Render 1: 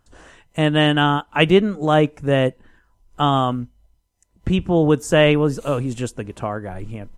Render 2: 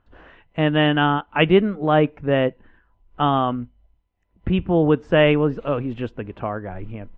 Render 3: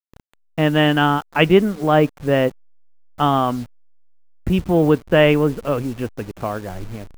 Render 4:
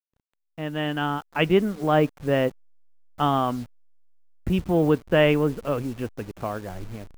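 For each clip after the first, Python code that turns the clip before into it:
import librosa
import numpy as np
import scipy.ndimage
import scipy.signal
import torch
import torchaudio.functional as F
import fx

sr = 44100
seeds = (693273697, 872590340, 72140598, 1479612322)

y1 = scipy.signal.sosfilt(scipy.signal.butter(4, 3000.0, 'lowpass', fs=sr, output='sos'), x)
y1 = fx.peak_eq(y1, sr, hz=130.0, db=-4.5, octaves=0.25)
y1 = y1 * 10.0 ** (-1.0 / 20.0)
y2 = fx.delta_hold(y1, sr, step_db=-37.0)
y2 = y2 * 10.0 ** (2.0 / 20.0)
y3 = fx.fade_in_head(y2, sr, length_s=1.8)
y3 = y3 * 10.0 ** (-5.0 / 20.0)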